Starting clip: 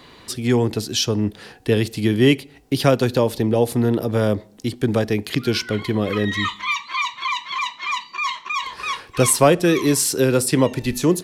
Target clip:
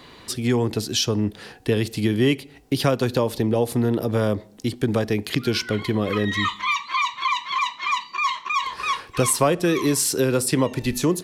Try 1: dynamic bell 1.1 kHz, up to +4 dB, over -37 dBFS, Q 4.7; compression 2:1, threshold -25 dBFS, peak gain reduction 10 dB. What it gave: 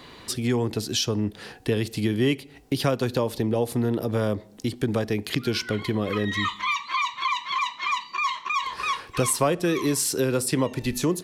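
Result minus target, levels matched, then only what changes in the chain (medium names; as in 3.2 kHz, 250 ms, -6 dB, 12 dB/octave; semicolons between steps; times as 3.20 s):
compression: peak gain reduction +3 dB
change: compression 2:1, threshold -18.5 dBFS, peak gain reduction 6.5 dB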